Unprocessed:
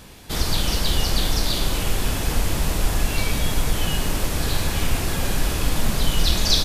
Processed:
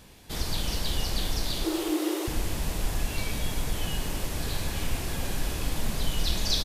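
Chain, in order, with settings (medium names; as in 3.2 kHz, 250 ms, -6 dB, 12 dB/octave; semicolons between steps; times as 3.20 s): peaking EQ 1.3 kHz -3 dB 0.35 oct; 1.64–2.28 s: frequency shift +300 Hz; delay 273 ms -14.5 dB; trim -8 dB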